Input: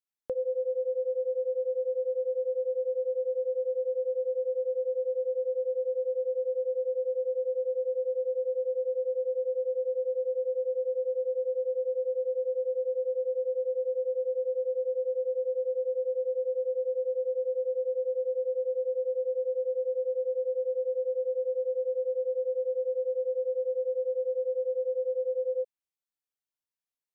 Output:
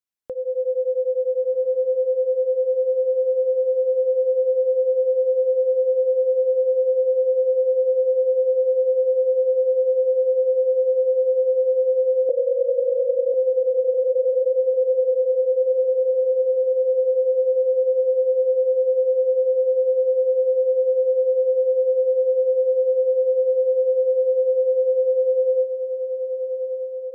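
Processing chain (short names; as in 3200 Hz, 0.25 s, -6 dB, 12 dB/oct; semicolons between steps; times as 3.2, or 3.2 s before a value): 12.29–13.34 sine-wave speech; AGC gain up to 8 dB; on a send: diffused feedback echo 1.405 s, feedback 54%, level -8 dB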